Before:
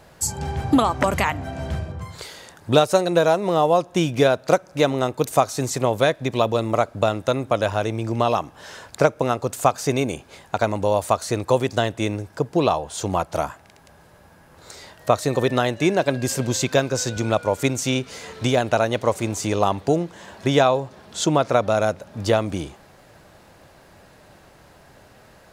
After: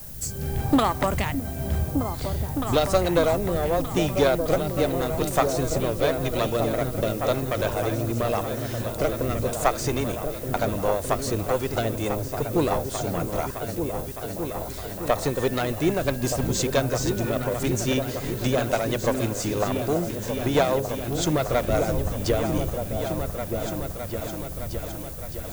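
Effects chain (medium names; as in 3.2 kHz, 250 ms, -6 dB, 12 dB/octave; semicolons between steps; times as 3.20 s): single-diode clipper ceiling -16.5 dBFS; wind noise 100 Hz -38 dBFS; rotary cabinet horn 0.9 Hz, later 6 Hz, at 10.25 s; added noise violet -41 dBFS; on a send: delay with an opening low-pass 612 ms, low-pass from 200 Hz, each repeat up 2 oct, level -3 dB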